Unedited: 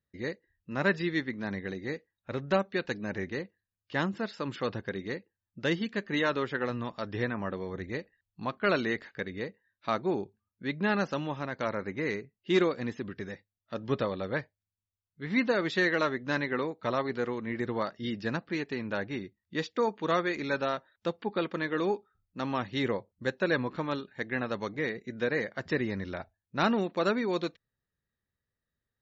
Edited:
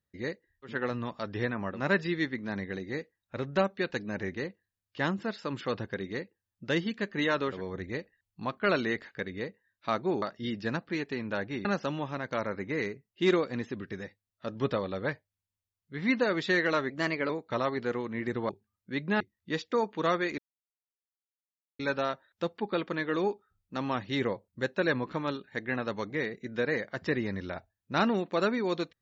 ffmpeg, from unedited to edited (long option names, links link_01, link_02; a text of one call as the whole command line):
ffmpeg -i in.wav -filter_complex "[0:a]asplit=11[link_01][link_02][link_03][link_04][link_05][link_06][link_07][link_08][link_09][link_10][link_11];[link_01]atrim=end=0.78[link_12];[link_02]atrim=start=6.41:end=7.62[link_13];[link_03]atrim=start=0.62:end=6.57[link_14];[link_04]atrim=start=7.46:end=10.222[link_15];[link_05]atrim=start=17.818:end=19.252[link_16];[link_06]atrim=start=10.928:end=16.184[link_17];[link_07]atrim=start=16.18:end=16.62,asetpts=PTS-STARTPTS,asetrate=49392,aresample=44100[link_18];[link_08]atrim=start=16.616:end=17.822[link_19];[link_09]atrim=start=10.218:end=10.932[link_20];[link_10]atrim=start=19.248:end=20.43,asetpts=PTS-STARTPTS,afade=type=out:start_time=1.178:duration=0.004:curve=hsin,apad=pad_dur=1.41[link_21];[link_11]atrim=start=20.43,asetpts=PTS-STARTPTS,afade=type=in:duration=0.004:curve=hsin[link_22];[link_12][link_13]acrossfade=duration=0.16:curve1=tri:curve2=tri[link_23];[link_23][link_14]acrossfade=duration=0.16:curve1=tri:curve2=tri[link_24];[link_24][link_15]acrossfade=duration=0.16:curve1=tri:curve2=tri[link_25];[link_25][link_16]acrossfade=duration=0.004:curve1=hsin:curve2=hsin[link_26];[link_26][link_17]acrossfade=duration=0.004:curve1=hsin:curve2=hsin[link_27];[link_27][link_18]acrossfade=duration=0.004:curve1=hsin:curve2=hsin[link_28];[link_28][link_19]acrossfade=duration=0.004:curve1=hsin:curve2=hsin[link_29];[link_29][link_20]acrossfade=duration=0.004:curve1=hsin:curve2=hsin[link_30];[link_21][link_22]concat=n=2:v=0:a=1[link_31];[link_30][link_31]acrossfade=duration=0.004:curve1=hsin:curve2=hsin" out.wav